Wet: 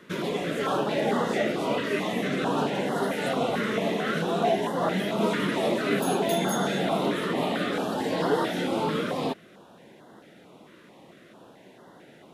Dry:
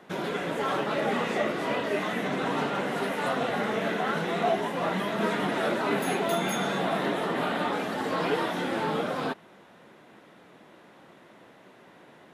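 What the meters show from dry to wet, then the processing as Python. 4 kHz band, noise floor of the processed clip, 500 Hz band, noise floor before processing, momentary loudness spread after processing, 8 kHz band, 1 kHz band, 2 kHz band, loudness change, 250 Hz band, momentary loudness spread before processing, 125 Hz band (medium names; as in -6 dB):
+2.0 dB, -52 dBFS, +2.5 dB, -54 dBFS, 3 LU, +3.0 dB, 0.0 dB, -1.0 dB, +1.5 dB, +3.5 dB, 3 LU, +3.5 dB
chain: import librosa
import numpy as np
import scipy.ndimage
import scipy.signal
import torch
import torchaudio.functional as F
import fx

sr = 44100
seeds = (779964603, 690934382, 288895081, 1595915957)

y = fx.filter_held_notch(x, sr, hz=4.5, low_hz=770.0, high_hz=2400.0)
y = y * librosa.db_to_amplitude(3.5)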